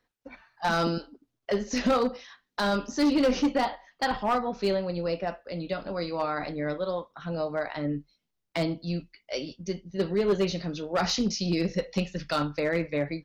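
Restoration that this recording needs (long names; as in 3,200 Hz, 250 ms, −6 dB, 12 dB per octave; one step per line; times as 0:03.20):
clipped peaks rebuilt −18.5 dBFS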